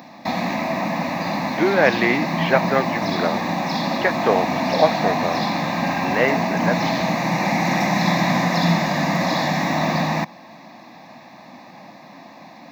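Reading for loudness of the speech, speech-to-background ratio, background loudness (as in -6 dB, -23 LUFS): -22.0 LUFS, -0.5 dB, -21.5 LUFS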